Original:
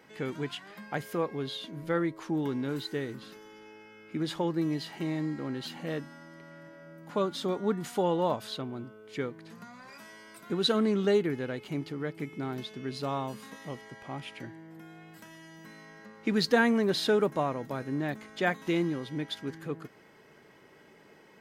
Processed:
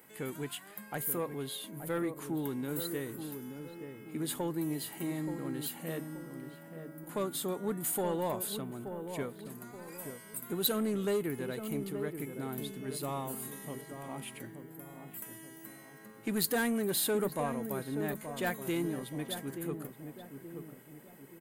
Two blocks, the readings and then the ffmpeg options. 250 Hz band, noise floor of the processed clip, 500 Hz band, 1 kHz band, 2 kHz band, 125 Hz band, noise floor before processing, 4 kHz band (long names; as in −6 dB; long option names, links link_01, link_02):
−4.5 dB, −53 dBFS, −5.0 dB, −5.5 dB, −6.0 dB, −4.0 dB, −57 dBFS, −5.5 dB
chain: -filter_complex "[0:a]asoftclip=type=tanh:threshold=-21dB,aexciter=amount=7.9:drive=8.2:freq=8000,asplit=2[link_01][link_02];[link_02]adelay=877,lowpass=frequency=860:poles=1,volume=-7dB,asplit=2[link_03][link_04];[link_04]adelay=877,lowpass=frequency=860:poles=1,volume=0.48,asplit=2[link_05][link_06];[link_06]adelay=877,lowpass=frequency=860:poles=1,volume=0.48,asplit=2[link_07][link_08];[link_08]adelay=877,lowpass=frequency=860:poles=1,volume=0.48,asplit=2[link_09][link_10];[link_10]adelay=877,lowpass=frequency=860:poles=1,volume=0.48,asplit=2[link_11][link_12];[link_12]adelay=877,lowpass=frequency=860:poles=1,volume=0.48[link_13];[link_01][link_03][link_05][link_07][link_09][link_11][link_13]amix=inputs=7:normalize=0,volume=-4dB"